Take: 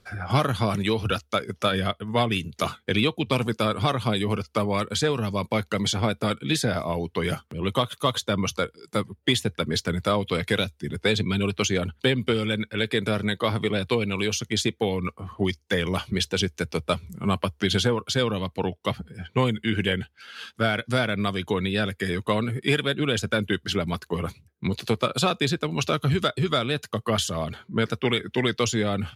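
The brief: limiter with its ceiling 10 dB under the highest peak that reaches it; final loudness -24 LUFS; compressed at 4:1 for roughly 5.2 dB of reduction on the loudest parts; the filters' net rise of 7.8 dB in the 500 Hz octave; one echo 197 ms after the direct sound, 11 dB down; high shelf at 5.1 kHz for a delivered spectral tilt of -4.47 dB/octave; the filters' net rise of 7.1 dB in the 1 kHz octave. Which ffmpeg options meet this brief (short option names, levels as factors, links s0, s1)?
-af "equalizer=f=500:t=o:g=7.5,equalizer=f=1000:t=o:g=7.5,highshelf=f=5100:g=-7,acompressor=threshold=0.126:ratio=4,alimiter=limit=0.15:level=0:latency=1,aecho=1:1:197:0.282,volume=1.5"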